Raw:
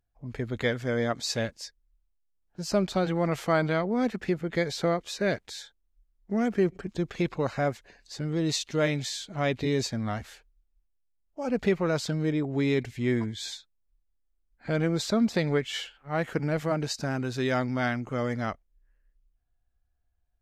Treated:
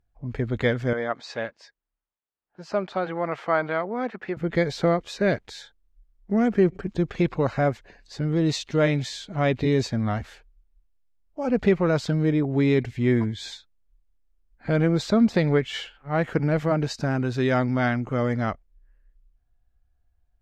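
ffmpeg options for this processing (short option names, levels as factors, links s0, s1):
-filter_complex "[0:a]asettb=1/sr,asplit=3[s0][s1][s2];[s0]atrim=end=0.934[s3];[s1]atrim=start=0.93:end=4.37,asetpts=PTS-STARTPTS,afade=t=in:d=0.004:c=qsin,afade=t=out:st=3.436:d=0.004:c=qsin,bandpass=f=1200:t=q:w=0.66[s4];[s2]atrim=start=4.366[s5];[s3][s4]acrossfade=d=0.004:c1=hsin:c2=qsin[s6];[s6][s5]acrossfade=d=0.004:c1=qsin:c2=hsin,lowpass=f=2800:p=1,lowshelf=f=130:g=4,volume=1.68"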